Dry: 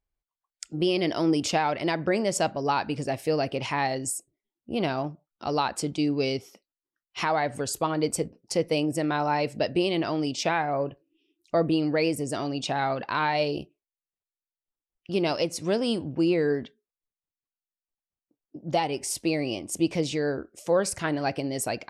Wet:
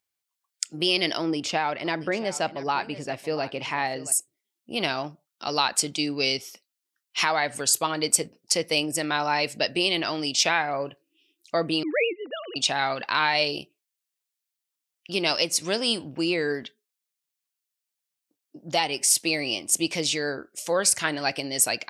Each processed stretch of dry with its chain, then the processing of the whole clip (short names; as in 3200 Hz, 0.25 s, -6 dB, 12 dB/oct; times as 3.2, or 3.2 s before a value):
1.17–4.12 LPF 1400 Hz 6 dB/oct + echo 0.679 s -15.5 dB
11.83–12.56 sine-wave speech + bell 950 Hz -8.5 dB 0.23 oct
whole clip: HPF 120 Hz; tilt shelf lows -8 dB, about 1300 Hz; gain +3.5 dB